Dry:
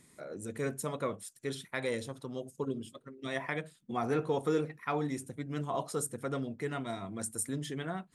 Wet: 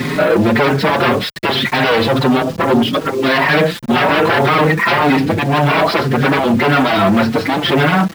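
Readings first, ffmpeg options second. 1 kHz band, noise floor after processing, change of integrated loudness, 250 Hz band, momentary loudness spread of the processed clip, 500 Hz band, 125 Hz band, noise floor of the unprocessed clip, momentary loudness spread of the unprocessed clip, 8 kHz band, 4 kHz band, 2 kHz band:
+25.5 dB, −26 dBFS, +23.0 dB, +23.0 dB, 3 LU, +21.0 dB, +22.0 dB, −65 dBFS, 9 LU, +5.5 dB, +28.5 dB, +27.0 dB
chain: -filter_complex "[0:a]asplit=2[link_01][link_02];[link_02]acompressor=threshold=-43dB:ratio=6,volume=-2dB[link_03];[link_01][link_03]amix=inputs=2:normalize=0,aeval=exprs='0.158*(cos(1*acos(clip(val(0)/0.158,-1,1)))-cos(1*PI/2))+0.0224*(cos(5*acos(clip(val(0)/0.158,-1,1)))-cos(5*PI/2))':channel_layout=same,aresample=11025,aeval=exprs='0.141*sin(PI/2*3.98*val(0)/0.141)':channel_layout=same,aresample=44100,apsyclip=30.5dB,highpass=120,lowpass=3300,aeval=exprs='val(0)*gte(abs(val(0)),0.158)':channel_layout=same,asplit=2[link_04][link_05];[link_05]adelay=5.2,afreqshift=1.8[link_06];[link_04][link_06]amix=inputs=2:normalize=1,volume=-7dB"

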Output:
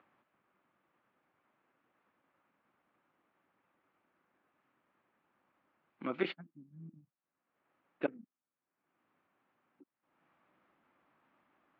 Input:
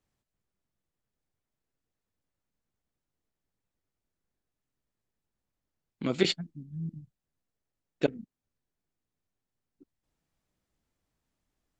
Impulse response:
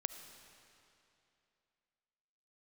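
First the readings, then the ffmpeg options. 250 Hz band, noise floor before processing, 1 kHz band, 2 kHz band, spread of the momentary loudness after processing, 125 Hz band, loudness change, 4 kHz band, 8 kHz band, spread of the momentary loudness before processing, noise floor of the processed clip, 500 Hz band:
−8.5 dB, below −85 dBFS, −1.5 dB, −5.0 dB, 18 LU, −15.0 dB, −7.5 dB, −16.0 dB, below −25 dB, 16 LU, below −85 dBFS, −8.0 dB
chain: -af "acompressor=mode=upward:threshold=-47dB:ratio=2.5,highpass=340,equalizer=frequency=440:width_type=q:width=4:gain=-8,equalizer=frequency=670:width_type=q:width=4:gain=-3,equalizer=frequency=1200:width_type=q:width=4:gain=4,equalizer=frequency=1900:width_type=q:width=4:gain=-3,lowpass=frequency=2300:width=0.5412,lowpass=frequency=2300:width=1.3066,volume=-2dB"

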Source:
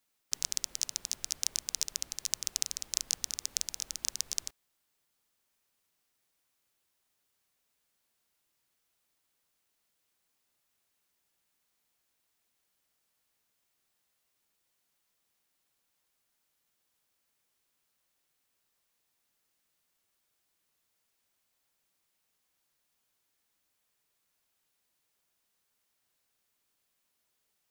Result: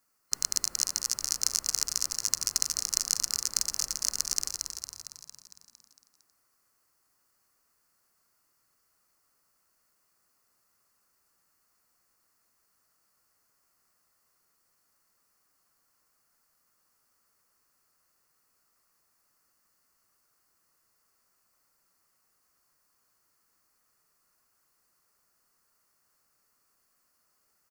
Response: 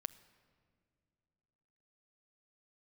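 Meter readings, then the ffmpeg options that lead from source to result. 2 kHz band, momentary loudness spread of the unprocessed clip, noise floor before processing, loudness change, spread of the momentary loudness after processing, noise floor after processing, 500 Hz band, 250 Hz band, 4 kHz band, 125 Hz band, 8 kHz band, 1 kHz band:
+4.0 dB, 4 LU, −79 dBFS, +5.0 dB, 9 LU, −73 dBFS, +6.0 dB, +6.0 dB, +5.5 dB, +6.0 dB, +6.0 dB, +10.5 dB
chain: -filter_complex "[0:a]superequalizer=10b=2:12b=0.501:13b=0.251,asplit=9[link_01][link_02][link_03][link_04][link_05][link_06][link_07][link_08][link_09];[link_02]adelay=228,afreqshift=-40,volume=-5.5dB[link_10];[link_03]adelay=456,afreqshift=-80,volume=-10.1dB[link_11];[link_04]adelay=684,afreqshift=-120,volume=-14.7dB[link_12];[link_05]adelay=912,afreqshift=-160,volume=-19.2dB[link_13];[link_06]adelay=1140,afreqshift=-200,volume=-23.8dB[link_14];[link_07]adelay=1368,afreqshift=-240,volume=-28.4dB[link_15];[link_08]adelay=1596,afreqshift=-280,volume=-33dB[link_16];[link_09]adelay=1824,afreqshift=-320,volume=-37.6dB[link_17];[link_01][link_10][link_11][link_12][link_13][link_14][link_15][link_16][link_17]amix=inputs=9:normalize=0,volume=4.5dB"

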